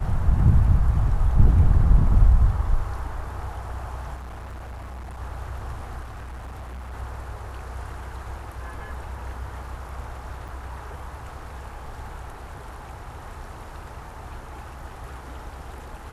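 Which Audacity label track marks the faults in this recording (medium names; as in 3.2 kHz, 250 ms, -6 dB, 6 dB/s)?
4.150000	5.200000	clipped -33.5 dBFS
6.020000	6.940000	clipped -33 dBFS
10.480000	10.490000	dropout 5.1 ms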